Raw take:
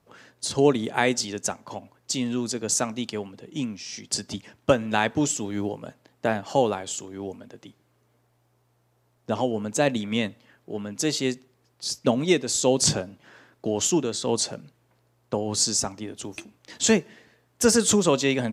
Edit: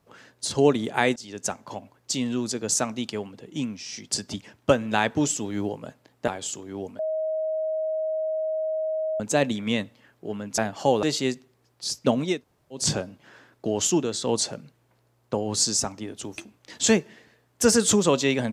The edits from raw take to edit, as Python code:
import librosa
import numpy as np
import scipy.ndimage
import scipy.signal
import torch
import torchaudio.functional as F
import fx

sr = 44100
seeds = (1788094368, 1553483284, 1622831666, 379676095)

y = fx.edit(x, sr, fx.fade_in_from(start_s=1.16, length_s=0.35, floor_db=-20.5),
    fx.move(start_s=6.28, length_s=0.45, to_s=11.03),
    fx.bleep(start_s=7.44, length_s=2.21, hz=631.0, db=-24.0),
    fx.room_tone_fill(start_s=12.32, length_s=0.5, crossfade_s=0.24), tone=tone)